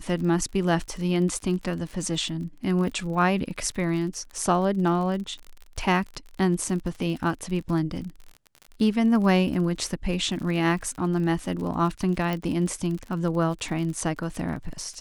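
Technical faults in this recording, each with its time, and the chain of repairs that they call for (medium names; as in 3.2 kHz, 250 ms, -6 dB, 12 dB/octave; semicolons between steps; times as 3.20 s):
crackle 45 per s -33 dBFS
12.33 s: pop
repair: de-click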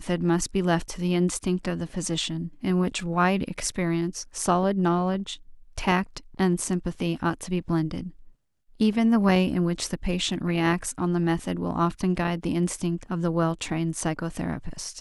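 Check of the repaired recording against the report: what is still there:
nothing left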